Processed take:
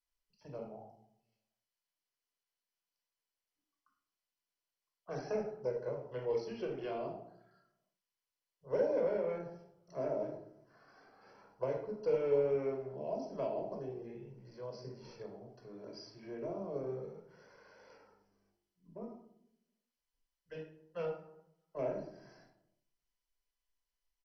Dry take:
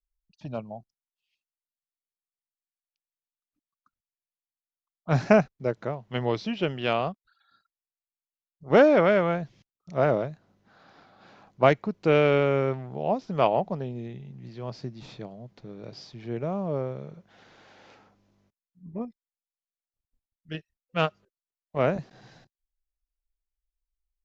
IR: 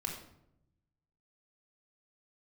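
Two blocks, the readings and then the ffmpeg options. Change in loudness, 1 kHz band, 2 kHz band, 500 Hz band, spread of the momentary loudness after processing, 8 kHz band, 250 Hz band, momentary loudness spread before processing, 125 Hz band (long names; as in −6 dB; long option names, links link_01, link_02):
−13.5 dB, −18.0 dB, −22.0 dB, −10.5 dB, 18 LU, can't be measured, −16.0 dB, 22 LU, −18.5 dB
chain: -filter_complex "[0:a]equalizer=frequency=3200:width=1.7:gain=-14,acrossover=split=180|370|1800[link_01][link_02][link_03][link_04];[link_01]acompressor=threshold=-39dB:ratio=4[link_05];[link_02]acompressor=threshold=-39dB:ratio=4[link_06];[link_03]acompressor=threshold=-25dB:ratio=4[link_07];[link_04]acompressor=threshold=-49dB:ratio=4[link_08];[link_05][link_06][link_07][link_08]amix=inputs=4:normalize=0,bass=frequency=250:gain=-11,treble=frequency=4000:gain=6,flanger=delay=2:depth=1.1:regen=32:speed=0.34:shape=sinusoidal,aecho=1:1:60|120:0.112|0.0258[link_09];[1:a]atrim=start_sample=2205,asetrate=57330,aresample=44100[link_10];[link_09][link_10]afir=irnorm=-1:irlink=0,acrossover=split=240|600|2500[link_11][link_12][link_13][link_14];[link_13]acompressor=threshold=-56dB:ratio=4[link_15];[link_11][link_12][link_15][link_14]amix=inputs=4:normalize=0" -ar 32000 -c:a mp2 -b:a 32k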